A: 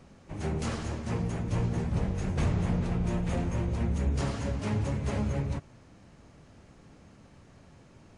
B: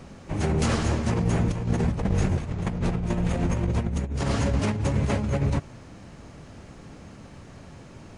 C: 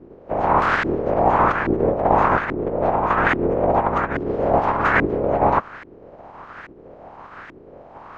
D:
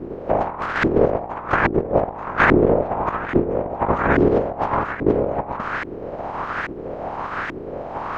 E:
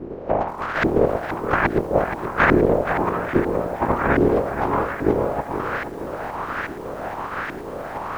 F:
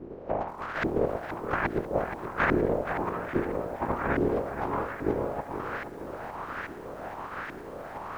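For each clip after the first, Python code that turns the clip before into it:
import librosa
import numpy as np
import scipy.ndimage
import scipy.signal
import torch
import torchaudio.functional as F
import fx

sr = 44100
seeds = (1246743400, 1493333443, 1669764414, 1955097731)

y1 = fx.over_compress(x, sr, threshold_db=-31.0, ratio=-0.5)
y1 = F.gain(torch.from_numpy(y1), 7.5).numpy()
y2 = fx.spec_clip(y1, sr, under_db=29)
y2 = fx.filter_lfo_lowpass(y2, sr, shape='saw_up', hz=1.2, low_hz=320.0, high_hz=1800.0, q=3.4)
y2 = F.gain(torch.from_numpy(y2), 3.5).numpy()
y3 = fx.over_compress(y2, sr, threshold_db=-25.0, ratio=-0.5)
y3 = F.gain(torch.from_numpy(y3), 6.0).numpy()
y4 = fx.echo_crushed(y3, sr, ms=473, feedback_pct=55, bits=7, wet_db=-9.5)
y4 = F.gain(torch.from_numpy(y4), -1.5).numpy()
y5 = y4 + 10.0 ** (-20.0 / 20.0) * np.pad(y4, (int(1017 * sr / 1000.0), 0))[:len(y4)]
y5 = F.gain(torch.from_numpy(y5), -9.0).numpy()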